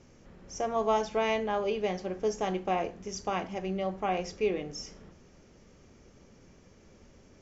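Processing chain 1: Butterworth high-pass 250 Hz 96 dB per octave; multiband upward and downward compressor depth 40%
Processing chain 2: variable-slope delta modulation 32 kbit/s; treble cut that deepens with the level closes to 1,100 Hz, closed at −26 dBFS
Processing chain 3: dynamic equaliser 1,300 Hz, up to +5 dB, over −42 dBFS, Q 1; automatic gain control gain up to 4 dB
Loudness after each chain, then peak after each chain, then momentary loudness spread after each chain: −32.5, −32.5, −26.0 LKFS; −18.0, −18.0, −9.5 dBFS; 21, 9, 10 LU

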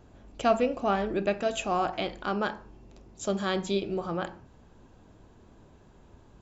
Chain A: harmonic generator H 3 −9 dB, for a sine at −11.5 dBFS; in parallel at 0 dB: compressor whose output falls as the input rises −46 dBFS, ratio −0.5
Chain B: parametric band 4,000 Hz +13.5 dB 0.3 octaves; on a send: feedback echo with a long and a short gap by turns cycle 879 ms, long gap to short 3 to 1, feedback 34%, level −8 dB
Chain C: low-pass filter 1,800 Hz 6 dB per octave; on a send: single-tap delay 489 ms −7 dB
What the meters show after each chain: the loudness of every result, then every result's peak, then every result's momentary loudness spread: −39.0, −29.0, −30.0 LKFS; −9.5, −11.0, −12.5 dBFS; 17, 17, 13 LU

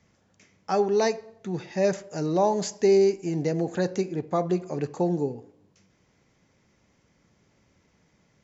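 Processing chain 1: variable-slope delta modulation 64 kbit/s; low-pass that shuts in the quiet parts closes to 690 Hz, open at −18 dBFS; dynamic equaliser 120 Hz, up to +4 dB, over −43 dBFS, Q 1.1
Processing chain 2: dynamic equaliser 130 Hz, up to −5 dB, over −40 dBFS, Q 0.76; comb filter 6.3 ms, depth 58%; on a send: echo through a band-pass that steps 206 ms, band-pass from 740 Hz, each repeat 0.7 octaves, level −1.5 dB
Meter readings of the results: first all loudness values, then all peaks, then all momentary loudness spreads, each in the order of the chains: −25.5, −26.0 LKFS; −10.0, −10.5 dBFS; 11, 9 LU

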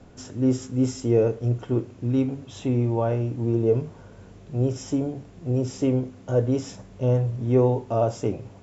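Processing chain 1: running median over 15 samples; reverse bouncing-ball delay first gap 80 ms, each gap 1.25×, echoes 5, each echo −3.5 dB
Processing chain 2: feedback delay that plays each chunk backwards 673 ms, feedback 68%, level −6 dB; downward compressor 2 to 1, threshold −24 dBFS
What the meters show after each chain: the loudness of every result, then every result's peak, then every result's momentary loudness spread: −22.5, −27.0 LKFS; −5.5, −13.5 dBFS; 7, 3 LU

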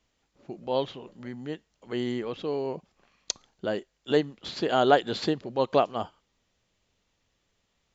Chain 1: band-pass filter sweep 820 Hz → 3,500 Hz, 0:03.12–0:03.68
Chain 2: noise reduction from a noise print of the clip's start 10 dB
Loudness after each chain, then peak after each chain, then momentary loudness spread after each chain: −40.5, −28.5 LKFS; −20.5, −7.5 dBFS; 18, 17 LU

